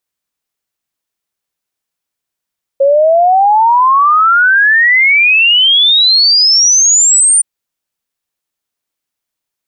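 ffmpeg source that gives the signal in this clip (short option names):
-f lavfi -i "aevalsrc='0.562*clip(min(t,4.62-t)/0.01,0,1)*sin(2*PI*540*4.62/log(9200/540)*(exp(log(9200/540)*t/4.62)-1))':d=4.62:s=44100"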